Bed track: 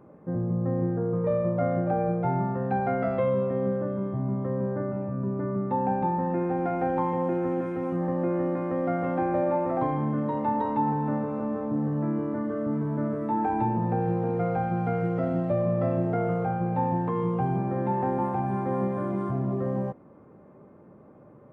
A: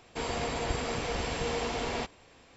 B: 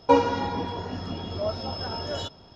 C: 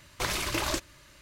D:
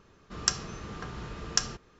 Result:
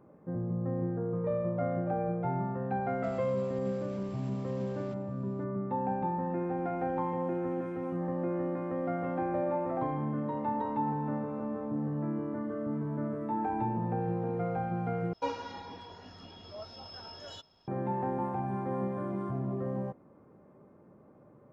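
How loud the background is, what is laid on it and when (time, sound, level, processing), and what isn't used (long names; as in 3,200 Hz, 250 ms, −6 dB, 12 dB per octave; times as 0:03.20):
bed track −6 dB
0:02.88: mix in A −15.5 dB + downward compressor, threshold −36 dBFS
0:15.13: overwrite with B −15 dB + tilt shelving filter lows −4 dB, about 750 Hz
not used: C, D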